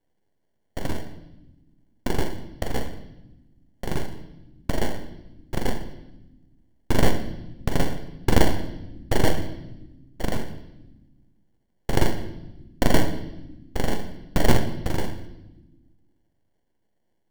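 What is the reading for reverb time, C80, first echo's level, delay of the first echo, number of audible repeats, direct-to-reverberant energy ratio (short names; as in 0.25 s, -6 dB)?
1.0 s, 13.5 dB, none, none, none, 9.0 dB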